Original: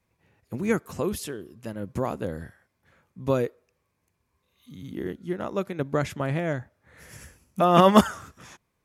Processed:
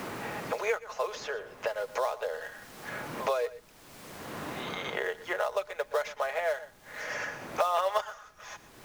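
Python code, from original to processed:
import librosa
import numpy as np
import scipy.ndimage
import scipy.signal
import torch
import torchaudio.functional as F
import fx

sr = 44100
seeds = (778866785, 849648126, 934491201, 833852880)

p1 = scipy.signal.sosfilt(scipy.signal.cheby1(5, 1.0, [490.0, 6500.0], 'bandpass', fs=sr, output='sos'), x)
p2 = p1 + 0.6 * np.pad(p1, (int(4.8 * sr / 1000.0), 0))[:len(p1)]
p3 = fx.dmg_noise_colour(p2, sr, seeds[0], colour='pink', level_db=-64.0)
p4 = fx.sample_hold(p3, sr, seeds[1], rate_hz=4700.0, jitter_pct=20)
p5 = p3 + (p4 * librosa.db_to_amplitude(-11.0))
p6 = p5 + 10.0 ** (-19.0 / 20.0) * np.pad(p5, (int(119 * sr / 1000.0), 0))[:len(p5)]
p7 = fx.band_squash(p6, sr, depth_pct=100)
y = p7 * librosa.db_to_amplitude(-2.0)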